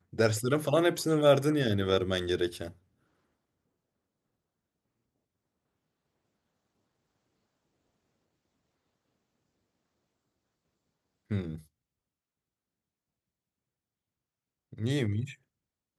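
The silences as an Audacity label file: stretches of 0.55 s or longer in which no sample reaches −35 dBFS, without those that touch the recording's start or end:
2.670000	11.310000	silence
11.560000	14.730000	silence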